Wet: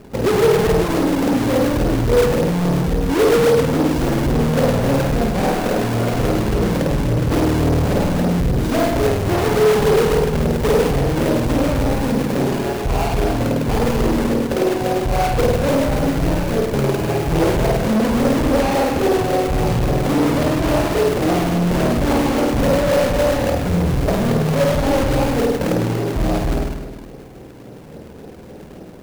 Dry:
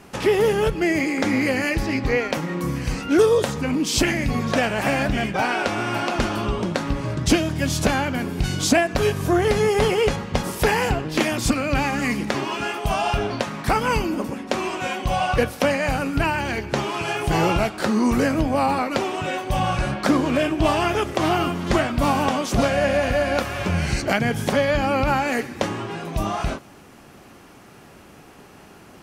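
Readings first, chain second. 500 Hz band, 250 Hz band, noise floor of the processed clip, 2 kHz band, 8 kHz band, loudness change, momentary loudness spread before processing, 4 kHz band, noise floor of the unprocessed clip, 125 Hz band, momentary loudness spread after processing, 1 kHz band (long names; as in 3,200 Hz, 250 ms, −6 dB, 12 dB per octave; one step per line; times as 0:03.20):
+5.5 dB, +5.0 dB, −37 dBFS, −2.0 dB, 0.0 dB, +4.0 dB, 7 LU, 0.0 dB, −46 dBFS, +7.0 dB, 4 LU, +1.0 dB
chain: running median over 41 samples
high-shelf EQ 9,500 Hz +9 dB
on a send: flutter between parallel walls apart 8.8 metres, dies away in 1.2 s
on the sum: hard clipping −22.5 dBFS, distortion −6 dB
parametric band 480 Hz +6 dB 0.53 octaves
in parallel at −4 dB: sample-and-hold swept by an LFO 40×, swing 160% 3.6 Hz
on the sum: mains-hum notches 50/100/150/200/250/300/350 Hz
level +4 dB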